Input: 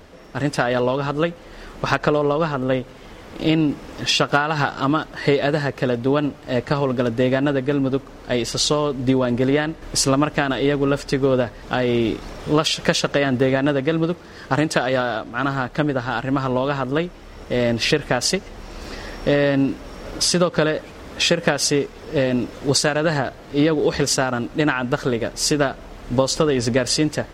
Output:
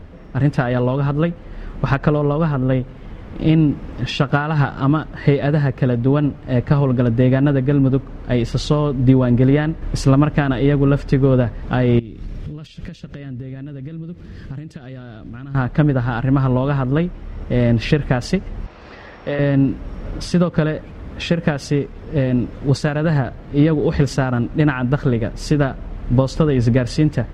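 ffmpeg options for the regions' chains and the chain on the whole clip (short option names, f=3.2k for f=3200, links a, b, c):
-filter_complex "[0:a]asettb=1/sr,asplit=3[a][b][c];[a]atrim=end=11.994[d];[b]atrim=start=11.99:end=15.55,asetpts=PTS-STARTPTS,afade=t=in:d=0.004:c=qsin,afade=t=out:st=3.556:d=0.004:c=qsin,equalizer=f=900:t=o:w=1.9:g=-12.5,acompressor=threshold=-35dB:ratio=12:attack=3.2:release=140:knee=1:detection=peak[e];[c]atrim=start=15.546[f];[d][e]acrossfade=d=0.004:c1=hsin:c2=qsin[g];[g][f]acrossfade=d=0.004:c1=qsin:c2=hsin,asettb=1/sr,asplit=3[h][i][j];[h]atrim=end=18.664[k];[i]atrim=start=18.66:end=19.39,asetpts=PTS-STARTPTS,afade=t=in:d=0.004:c=qsin,afade=t=out:st=0.726:d=0.004:c=qsin,highpass=63,acrossover=split=450 6400:gain=0.224 1 0.0794[l][m][n];[l][m][n]amix=inputs=3:normalize=0[o];[j]atrim=start=19.386[p];[k][o]acrossfade=d=0.004:c1=hsin:c2=qsin[q];[q][p]acrossfade=d=0.004:c1=qsin:c2=hsin,bass=f=250:g=13,treble=f=4k:g=-13,dynaudnorm=f=240:g=17:m=11.5dB,volume=-1dB"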